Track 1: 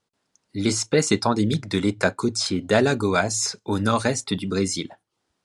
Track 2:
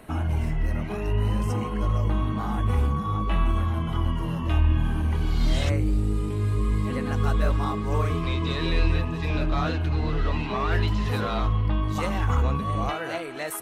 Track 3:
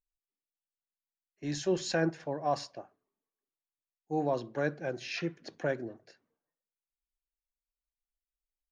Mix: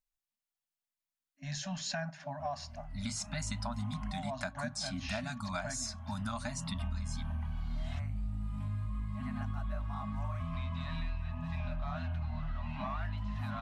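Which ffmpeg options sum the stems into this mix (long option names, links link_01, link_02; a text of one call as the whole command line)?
ffmpeg -i stem1.wav -i stem2.wav -i stem3.wav -filter_complex "[0:a]adelay=2400,volume=-9dB[link_01];[1:a]highshelf=frequency=3000:gain=-11,adelay=2300,volume=-3dB[link_02];[2:a]volume=0.5dB,asplit=2[link_03][link_04];[link_04]apad=whole_len=701957[link_05];[link_02][link_05]sidechaincompress=threshold=-46dB:ratio=16:attack=33:release=1060[link_06];[link_01][link_06][link_03]amix=inputs=3:normalize=0,afftfilt=real='re*(1-between(b*sr/4096,270,580))':imag='im*(1-between(b*sr/4096,270,580))':win_size=4096:overlap=0.75,acompressor=threshold=-34dB:ratio=6" out.wav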